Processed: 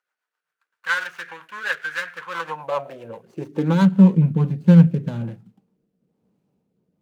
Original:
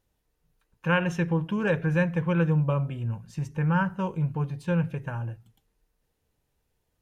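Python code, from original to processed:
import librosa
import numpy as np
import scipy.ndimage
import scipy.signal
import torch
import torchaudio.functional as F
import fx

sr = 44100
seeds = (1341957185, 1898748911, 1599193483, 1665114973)

y = scipy.signal.medfilt(x, 25)
y = fx.rotary_switch(y, sr, hz=7.5, then_hz=1.1, switch_at_s=3.99)
y = fx.filter_sweep_highpass(y, sr, from_hz=1500.0, to_hz=190.0, start_s=2.12, end_s=3.99, q=4.3)
y = y * 10.0 ** (8.5 / 20.0)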